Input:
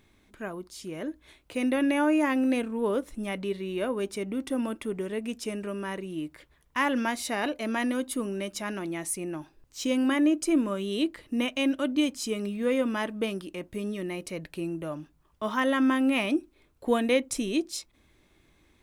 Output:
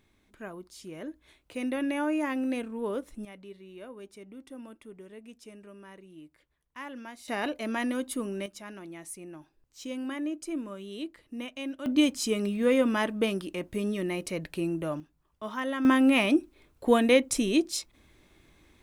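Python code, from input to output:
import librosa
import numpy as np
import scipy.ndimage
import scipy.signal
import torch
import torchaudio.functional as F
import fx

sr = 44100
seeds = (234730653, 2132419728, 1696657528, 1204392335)

y = fx.gain(x, sr, db=fx.steps((0.0, -5.0), (3.25, -15.0), (7.28, -2.0), (8.46, -10.0), (11.86, 2.5), (15.0, -6.5), (15.85, 3.0)))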